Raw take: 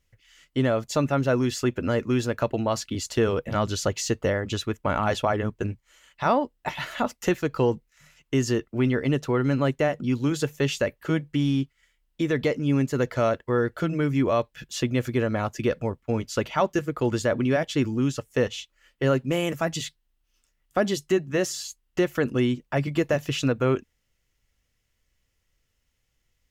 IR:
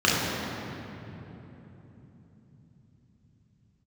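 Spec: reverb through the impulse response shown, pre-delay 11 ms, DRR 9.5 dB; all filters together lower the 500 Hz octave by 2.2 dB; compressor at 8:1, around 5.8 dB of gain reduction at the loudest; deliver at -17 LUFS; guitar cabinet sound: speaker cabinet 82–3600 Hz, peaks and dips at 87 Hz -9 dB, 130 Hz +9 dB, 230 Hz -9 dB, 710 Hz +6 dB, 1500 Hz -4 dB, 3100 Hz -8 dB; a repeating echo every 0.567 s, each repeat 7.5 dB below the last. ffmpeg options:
-filter_complex "[0:a]equalizer=f=500:t=o:g=-4,acompressor=threshold=-25dB:ratio=8,aecho=1:1:567|1134|1701|2268|2835:0.422|0.177|0.0744|0.0312|0.0131,asplit=2[a][b];[1:a]atrim=start_sample=2205,adelay=11[c];[b][c]afir=irnorm=-1:irlink=0,volume=-29dB[d];[a][d]amix=inputs=2:normalize=0,highpass=82,equalizer=f=87:t=q:w=4:g=-9,equalizer=f=130:t=q:w=4:g=9,equalizer=f=230:t=q:w=4:g=-9,equalizer=f=710:t=q:w=4:g=6,equalizer=f=1.5k:t=q:w=4:g=-4,equalizer=f=3.1k:t=q:w=4:g=-8,lowpass=f=3.6k:w=0.5412,lowpass=f=3.6k:w=1.3066,volume=12dB"

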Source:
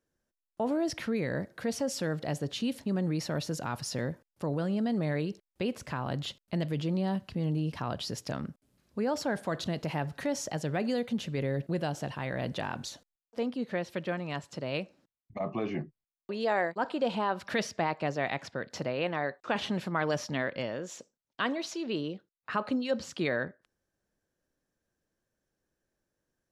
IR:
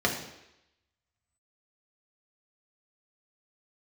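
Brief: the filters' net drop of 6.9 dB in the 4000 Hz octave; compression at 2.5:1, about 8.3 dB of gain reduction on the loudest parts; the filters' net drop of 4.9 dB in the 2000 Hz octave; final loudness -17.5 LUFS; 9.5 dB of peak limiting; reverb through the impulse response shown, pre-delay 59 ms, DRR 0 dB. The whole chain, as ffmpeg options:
-filter_complex "[0:a]equalizer=f=2k:t=o:g=-4.5,equalizer=f=4k:t=o:g=-8,acompressor=threshold=-37dB:ratio=2.5,alimiter=level_in=9.5dB:limit=-24dB:level=0:latency=1,volume=-9.5dB,asplit=2[a][b];[1:a]atrim=start_sample=2205,adelay=59[c];[b][c]afir=irnorm=-1:irlink=0,volume=-12dB[d];[a][d]amix=inputs=2:normalize=0,volume=21.5dB"

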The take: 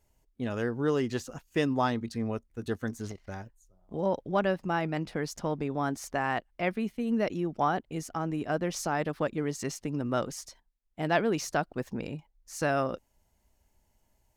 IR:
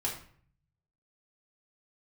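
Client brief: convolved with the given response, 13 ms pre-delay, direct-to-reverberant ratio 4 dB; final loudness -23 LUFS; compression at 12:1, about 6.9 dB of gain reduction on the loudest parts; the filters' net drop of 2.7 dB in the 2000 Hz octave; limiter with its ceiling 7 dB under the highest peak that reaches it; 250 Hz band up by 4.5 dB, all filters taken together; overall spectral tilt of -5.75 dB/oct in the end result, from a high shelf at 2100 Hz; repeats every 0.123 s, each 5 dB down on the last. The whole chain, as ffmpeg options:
-filter_complex "[0:a]equalizer=f=250:t=o:g=5.5,equalizer=f=2k:t=o:g=-5.5,highshelf=f=2.1k:g=3.5,acompressor=threshold=-26dB:ratio=12,alimiter=limit=-23dB:level=0:latency=1,aecho=1:1:123|246|369|492|615|738|861:0.562|0.315|0.176|0.0988|0.0553|0.031|0.0173,asplit=2[a][b];[1:a]atrim=start_sample=2205,adelay=13[c];[b][c]afir=irnorm=-1:irlink=0,volume=-8dB[d];[a][d]amix=inputs=2:normalize=0,volume=7.5dB"

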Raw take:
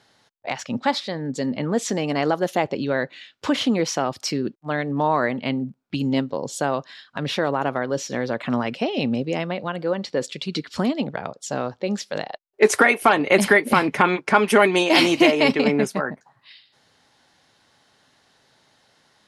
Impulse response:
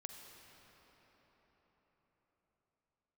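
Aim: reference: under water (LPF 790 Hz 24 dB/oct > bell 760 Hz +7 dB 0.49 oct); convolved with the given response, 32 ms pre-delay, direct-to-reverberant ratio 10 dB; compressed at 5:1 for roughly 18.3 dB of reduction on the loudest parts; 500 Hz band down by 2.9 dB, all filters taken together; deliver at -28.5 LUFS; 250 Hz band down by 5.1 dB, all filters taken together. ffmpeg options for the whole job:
-filter_complex "[0:a]equalizer=f=250:t=o:g=-5.5,equalizer=f=500:t=o:g=-4,acompressor=threshold=-34dB:ratio=5,asplit=2[a][b];[1:a]atrim=start_sample=2205,adelay=32[c];[b][c]afir=irnorm=-1:irlink=0,volume=-6dB[d];[a][d]amix=inputs=2:normalize=0,lowpass=f=790:w=0.5412,lowpass=f=790:w=1.3066,equalizer=f=760:t=o:w=0.49:g=7,volume=10.5dB"

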